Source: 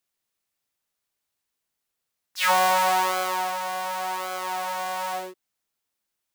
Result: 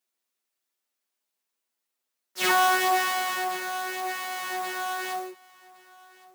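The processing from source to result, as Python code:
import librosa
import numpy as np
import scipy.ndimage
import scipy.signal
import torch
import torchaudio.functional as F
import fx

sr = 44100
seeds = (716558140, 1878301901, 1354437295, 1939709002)

y = fx.lower_of_two(x, sr, delay_ms=8.1)
y = scipy.signal.sosfilt(scipy.signal.butter(4, 210.0, 'highpass', fs=sr, output='sos'), y)
y = y + 10.0 ** (-22.0 / 20.0) * np.pad(y, (int(1114 * sr / 1000.0), 0))[:len(y)]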